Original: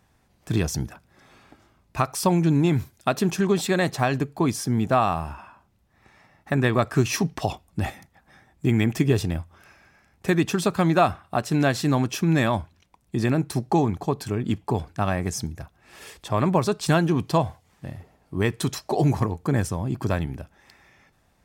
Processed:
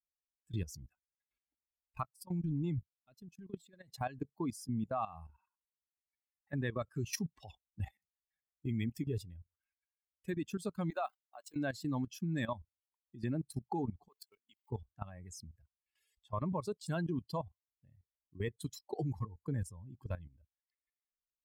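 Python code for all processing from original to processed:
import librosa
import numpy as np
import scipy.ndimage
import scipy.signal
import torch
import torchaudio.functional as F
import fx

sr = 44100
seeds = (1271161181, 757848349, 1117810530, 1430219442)

y = fx.chain(x, sr, fx.peak_eq(hz=100.0, db=5.5, octaves=1.6),
    fx.transient(attack_db=-12, sustain_db=-8),
    fx.level_steps(step_db=10), at=(2.03, 3.88))
y = fx.chain(y, sr, fx.highpass(hz=470.0, slope=12),
    fx.notch(hz=5000.0, q=26.0),
    fx.sample_gate(floor_db=-40.5), at=(10.9, 11.56))
y = fx.chain(y, sr, fx.zero_step(step_db=-35.5),
    fx.highpass(hz=1200.0, slope=6),
    fx.level_steps(step_db=18), at=(14.08, 14.71))
y = fx.bin_expand(y, sr, power=2.0)
y = fx.dynamic_eq(y, sr, hz=2500.0, q=1.2, threshold_db=-48.0, ratio=4.0, max_db=-5)
y = fx.level_steps(y, sr, step_db=15)
y = y * librosa.db_to_amplitude(-4.5)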